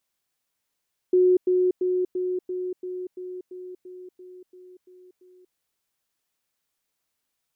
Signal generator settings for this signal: level ladder 365 Hz -14.5 dBFS, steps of -3 dB, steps 13, 0.24 s 0.10 s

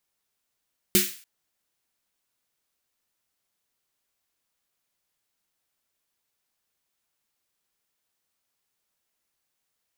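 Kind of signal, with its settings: snare drum length 0.29 s, tones 200 Hz, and 360 Hz, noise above 1700 Hz, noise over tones 2 dB, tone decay 0.23 s, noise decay 0.44 s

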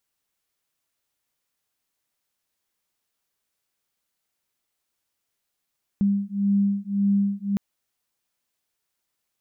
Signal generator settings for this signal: beating tones 199 Hz, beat 1.8 Hz, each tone -22.5 dBFS 1.56 s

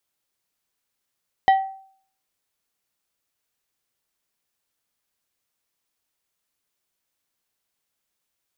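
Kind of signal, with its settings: glass hit plate, lowest mode 772 Hz, decay 0.55 s, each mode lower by 9.5 dB, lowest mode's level -9.5 dB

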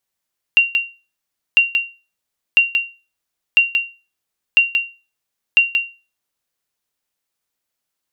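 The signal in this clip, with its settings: sonar ping 2760 Hz, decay 0.31 s, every 1.00 s, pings 6, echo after 0.18 s, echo -6 dB -3.5 dBFS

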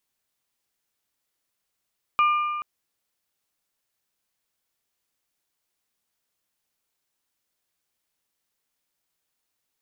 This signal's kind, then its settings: metal hit bell, length 0.43 s, lowest mode 1200 Hz, modes 3, decay 1.92 s, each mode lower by 9.5 dB, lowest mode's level -15.5 dB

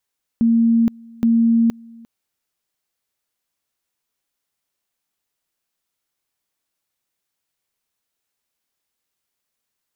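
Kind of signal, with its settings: two-level tone 230 Hz -11.5 dBFS, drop 26.5 dB, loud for 0.47 s, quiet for 0.35 s, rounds 2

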